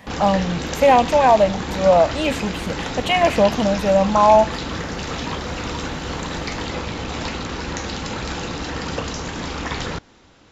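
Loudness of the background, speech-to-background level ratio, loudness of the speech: -27.0 LUFS, 9.5 dB, -17.5 LUFS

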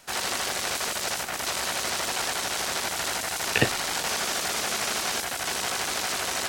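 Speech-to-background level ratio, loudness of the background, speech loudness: -0.5 dB, -27.0 LUFS, -27.5 LUFS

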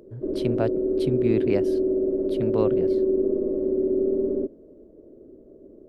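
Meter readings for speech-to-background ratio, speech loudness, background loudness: -5.0 dB, -29.0 LUFS, -24.0 LUFS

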